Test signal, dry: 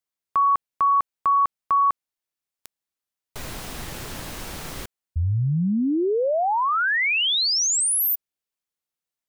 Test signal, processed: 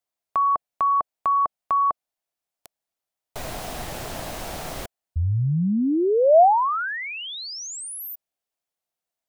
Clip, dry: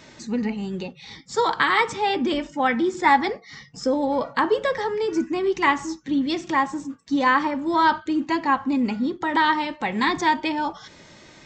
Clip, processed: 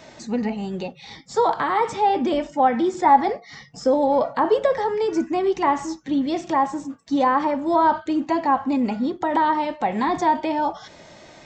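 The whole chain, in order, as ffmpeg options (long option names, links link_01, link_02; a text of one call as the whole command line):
ffmpeg -i in.wav -filter_complex "[0:a]equalizer=frequency=680:width_type=o:width=0.62:gain=10.5,acrossover=split=1200[link_01][link_02];[link_02]acompressor=threshold=-35dB:ratio=6:attack=4.4:release=28:knee=1:detection=rms[link_03];[link_01][link_03]amix=inputs=2:normalize=0" out.wav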